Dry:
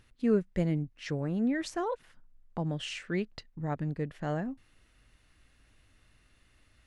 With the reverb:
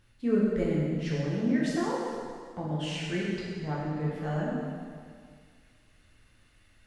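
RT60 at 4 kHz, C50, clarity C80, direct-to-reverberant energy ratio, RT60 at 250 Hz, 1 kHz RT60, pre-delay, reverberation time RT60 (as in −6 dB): 1.9 s, −1.5 dB, 0.0 dB, −6.5 dB, 2.0 s, 2.0 s, 5 ms, 2.0 s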